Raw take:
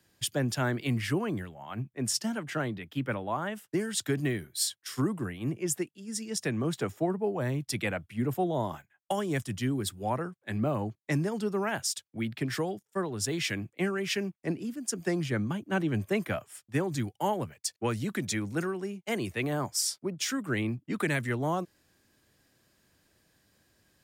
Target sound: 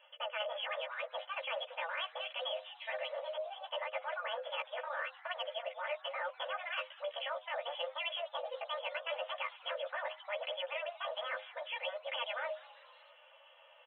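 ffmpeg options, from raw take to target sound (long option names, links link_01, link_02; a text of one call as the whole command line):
ffmpeg -i in.wav -filter_complex "[0:a]bandreject=frequency=60:width_type=h:width=6,bandreject=frequency=120:width_type=h:width=6,bandreject=frequency=180:width_type=h:width=6,bandreject=frequency=240:width_type=h:width=6,bandreject=frequency=300:width_type=h:width=6,bandreject=frequency=360:width_type=h:width=6,bandreject=frequency=420:width_type=h:width=6,afftfilt=real='re*lt(hypot(re,im),0.178)':imag='im*lt(hypot(re,im),0.178)':win_size=1024:overlap=0.75,aecho=1:1:5.8:0.6,adynamicequalizer=threshold=0.00355:dfrequency=510:dqfactor=1.5:tfrequency=510:tqfactor=1.5:attack=5:release=100:ratio=0.375:range=2.5:mode=cutabove:tftype=bell,afftfilt=real='re*between(b*sr/4096,270,2000)':imag='im*between(b*sr/4096,270,2000)':win_size=4096:overlap=0.75,areverse,acompressor=threshold=-49dB:ratio=4,areverse,flanger=delay=19:depth=6.9:speed=0.43,asplit=5[link_01][link_02][link_03][link_04][link_05];[link_02]adelay=342,afreqshift=120,volume=-20.5dB[link_06];[link_03]adelay=684,afreqshift=240,volume=-25.5dB[link_07];[link_04]adelay=1026,afreqshift=360,volume=-30.6dB[link_08];[link_05]adelay=1368,afreqshift=480,volume=-35.6dB[link_09];[link_01][link_06][link_07][link_08][link_09]amix=inputs=5:normalize=0,asetrate=76440,aresample=44100,volume=13.5dB" out.wav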